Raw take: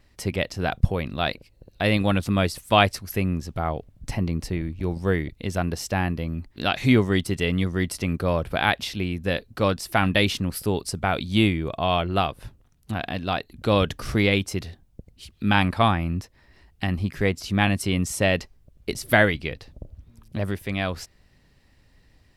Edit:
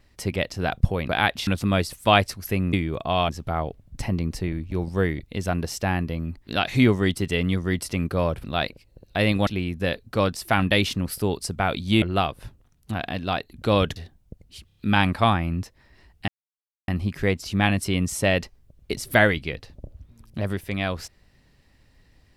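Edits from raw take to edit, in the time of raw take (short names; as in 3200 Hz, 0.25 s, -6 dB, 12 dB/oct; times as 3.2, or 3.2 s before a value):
1.09–2.12 swap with 8.53–8.91
11.46–12.02 move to 3.38
13.96–14.63 cut
15.34 stutter 0.03 s, 4 plays
16.86 insert silence 0.60 s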